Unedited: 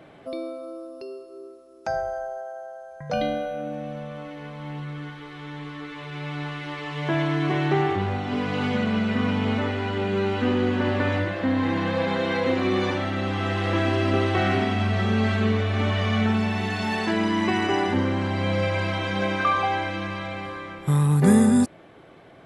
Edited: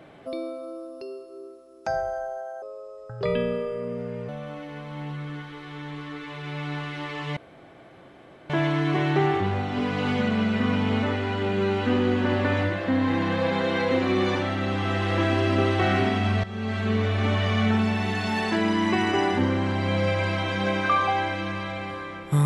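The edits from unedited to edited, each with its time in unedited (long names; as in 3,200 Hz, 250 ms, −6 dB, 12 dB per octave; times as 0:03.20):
0:02.62–0:03.97: play speed 81%
0:07.05: splice in room tone 1.13 s
0:14.99–0:15.64: fade in, from −16 dB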